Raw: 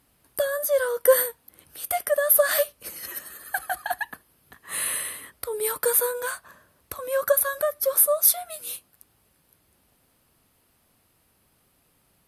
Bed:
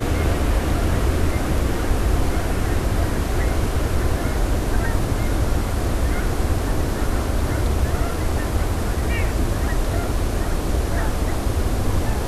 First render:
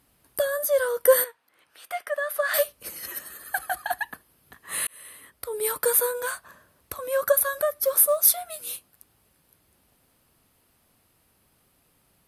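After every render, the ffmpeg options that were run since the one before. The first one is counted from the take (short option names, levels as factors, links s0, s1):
-filter_complex "[0:a]asettb=1/sr,asplit=3[s0][s1][s2];[s0]atrim=end=1.244[s3];[s1]atrim=start=1.24:end=2.54,asetpts=PTS-STARTPTS,afade=t=in:d=0.004:c=qsin,afade=t=out:st=1.296:d=0.004:c=qsin,bandpass=f=1600:t=q:w=0.78[s4];[s2]atrim=start=2.536[s5];[s3][s4]acrossfade=d=0.004:c1=hsin:c2=qsin[s6];[s6][s5]acrossfade=d=0.004:c1=qsin:c2=hsin,asettb=1/sr,asplit=3[s7][s8][s9];[s7]atrim=end=7.784[s10];[s8]atrim=start=7.78:end=8.66,asetpts=PTS-STARTPTS,afade=t=in:d=0.004:c=qsin,afade=t=out:st=0.876:d=0.004:c=qsin,acrusher=bits=8:mode=log:mix=0:aa=0.000001[s11];[s9]atrim=start=8.656[s12];[s10][s11]acrossfade=d=0.004:c1=hsin:c2=qsin[s13];[s13][s12]acrossfade=d=0.004:c1=qsin:c2=hsin,asplit=2[s14][s15];[s14]atrim=end=4.87,asetpts=PTS-STARTPTS,afade=t=out:st=4.866:d=0.004:c=hsin[s16];[s15]atrim=start=4.87,asetpts=PTS-STARTPTS,afade=t=in:d=0.79[s17];[s16][s17]concat=n=2:v=0:a=1"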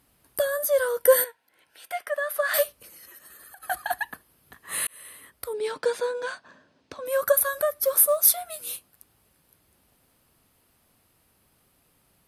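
-filter_complex "[0:a]asettb=1/sr,asplit=3[s0][s1][s2];[s0]atrim=end=0.994[s3];[s1]atrim=start=0.99:end=1.99,asetpts=PTS-STARTPTS,afade=t=in:d=0.004:c=qsin,afade=t=out:st=0.996:d=0.004:c=qsin,asuperstop=centerf=1200:order=12:qfactor=5.6[s4];[s2]atrim=start=1.986[s5];[s3][s4]acrossfade=d=0.004:c1=hsin:c2=qsin[s6];[s6][s5]acrossfade=d=0.004:c1=qsin:c2=hsin,asplit=3[s7][s8][s9];[s7]afade=t=out:st=2.76:d=0.02[s10];[s8]acompressor=threshold=0.00631:ratio=16:attack=3.2:release=140:knee=1:detection=peak,afade=t=in:st=2.76:d=0.02,afade=t=out:st=3.62:d=0.02[s11];[s9]afade=t=in:st=3.62:d=0.02[s12];[s10][s11][s12]amix=inputs=3:normalize=0,asettb=1/sr,asplit=3[s13][s14][s15];[s13]atrim=end=5.534[s16];[s14]atrim=start=5.53:end=7.06,asetpts=PTS-STARTPTS,afade=t=in:d=0.004:c=qsin,afade=t=out:st=1.526:d=0.004:c=qsin,highpass=140,equalizer=f=260:t=q:w=4:g=8,equalizer=f=1200:t=q:w=4:g=-7,equalizer=f=2000:t=q:w=4:g=-3,lowpass=f=5800:w=0.5412,lowpass=f=5800:w=1.3066[s17];[s15]atrim=start=7.056[s18];[s16][s17]acrossfade=d=0.004:c1=hsin:c2=qsin[s19];[s19][s18]acrossfade=d=0.004:c1=qsin:c2=hsin"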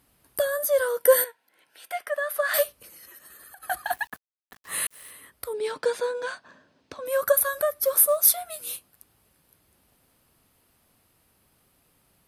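-filter_complex "[0:a]asettb=1/sr,asplit=3[s0][s1][s2];[s0]atrim=end=0.814[s3];[s1]atrim=start=0.81:end=2,asetpts=PTS-STARTPTS,afade=t=in:d=0.004:c=qsin,afade=t=out:st=1.186:d=0.004:c=qsin,highpass=160[s4];[s2]atrim=start=1.996[s5];[s3][s4]acrossfade=d=0.004:c1=hsin:c2=qsin[s6];[s6][s5]acrossfade=d=0.004:c1=qsin:c2=hsin,asettb=1/sr,asplit=3[s7][s8][s9];[s7]atrim=end=3.854[s10];[s8]atrim=start=3.85:end=5.11,asetpts=PTS-STARTPTS,afade=t=in:d=0.004:c=qsin,afade=t=out:st=1.256:d=0.004:c=qsin,aeval=exprs='val(0)*gte(abs(val(0)),0.00473)':c=same[s11];[s9]atrim=start=5.106[s12];[s10][s11]acrossfade=d=0.004:c1=hsin:c2=qsin[s13];[s13][s12]acrossfade=d=0.004:c1=qsin:c2=hsin"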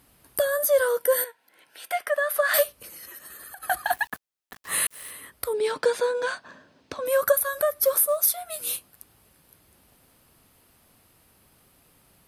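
-filter_complex "[0:a]asplit=2[s0][s1];[s1]acompressor=threshold=0.0355:ratio=6,volume=0.841[s2];[s0][s2]amix=inputs=2:normalize=0,alimiter=limit=0.335:level=0:latency=1:release=405"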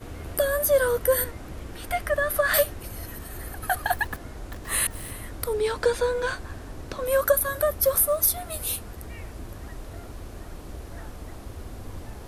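-filter_complex "[1:a]volume=0.133[s0];[0:a][s0]amix=inputs=2:normalize=0"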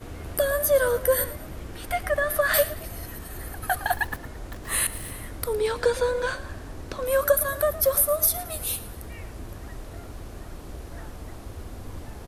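-filter_complex "[0:a]asplit=5[s0][s1][s2][s3][s4];[s1]adelay=111,afreqshift=36,volume=0.158[s5];[s2]adelay=222,afreqshift=72,volume=0.0631[s6];[s3]adelay=333,afreqshift=108,volume=0.0254[s7];[s4]adelay=444,afreqshift=144,volume=0.0101[s8];[s0][s5][s6][s7][s8]amix=inputs=5:normalize=0"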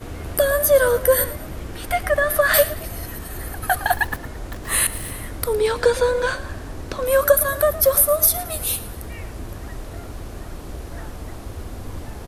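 -af "volume=1.88"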